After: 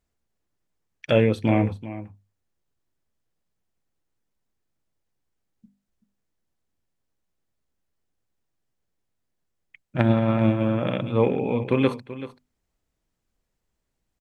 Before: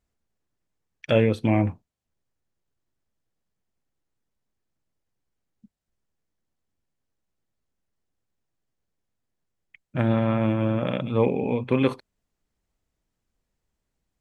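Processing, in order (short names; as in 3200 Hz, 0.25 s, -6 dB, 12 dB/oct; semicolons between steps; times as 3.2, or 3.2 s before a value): 9.97–10.63 transient shaper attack +11 dB, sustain -5 dB; notches 50/100/150/200/250 Hz; echo 0.383 s -14.5 dB; gain +1 dB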